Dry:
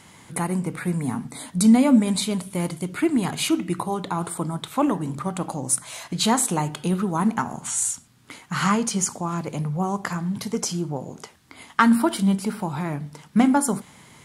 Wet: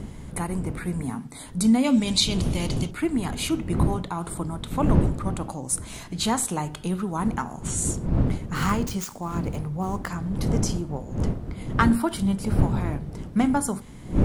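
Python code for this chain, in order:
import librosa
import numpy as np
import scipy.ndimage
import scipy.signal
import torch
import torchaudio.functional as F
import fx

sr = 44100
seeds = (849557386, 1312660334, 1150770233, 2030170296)

y = fx.dead_time(x, sr, dead_ms=0.053, at=(8.55, 10.09))
y = fx.dmg_wind(y, sr, seeds[0], corner_hz=180.0, level_db=-24.0)
y = fx.band_shelf(y, sr, hz=4100.0, db=11.5, octaves=1.7, at=(1.84, 2.91))
y = y * 10.0 ** (-4.0 / 20.0)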